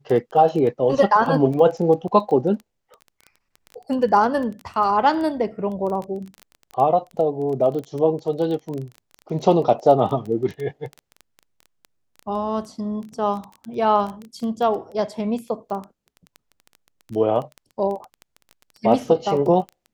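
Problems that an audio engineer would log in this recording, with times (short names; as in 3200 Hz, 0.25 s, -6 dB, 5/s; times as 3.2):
crackle 12/s -27 dBFS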